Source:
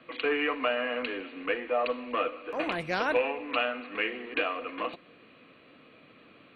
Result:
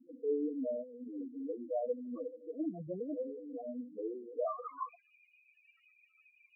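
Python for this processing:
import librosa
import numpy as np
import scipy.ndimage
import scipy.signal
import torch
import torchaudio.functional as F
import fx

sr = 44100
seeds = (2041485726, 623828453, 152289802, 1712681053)

y = fx.tracing_dist(x, sr, depth_ms=0.023)
y = fx.over_compress(y, sr, threshold_db=-37.0, ratio=-0.5, at=(0.82, 1.47), fade=0.02)
y = fx.filter_sweep_bandpass(y, sr, from_hz=250.0, to_hz=2300.0, start_s=3.99, end_s=5.02, q=1.2)
y = fx.spec_topn(y, sr, count=4)
y = fx.comb_cascade(y, sr, direction='falling', hz=1.9)
y = y * librosa.db_to_amplitude(5.5)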